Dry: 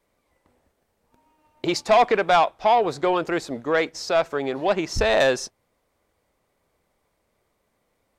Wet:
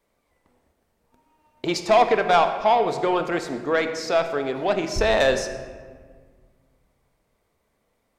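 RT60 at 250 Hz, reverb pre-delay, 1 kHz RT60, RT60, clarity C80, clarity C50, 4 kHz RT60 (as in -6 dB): 2.4 s, 4 ms, 1.6 s, 1.7 s, 10.5 dB, 9.0 dB, 0.95 s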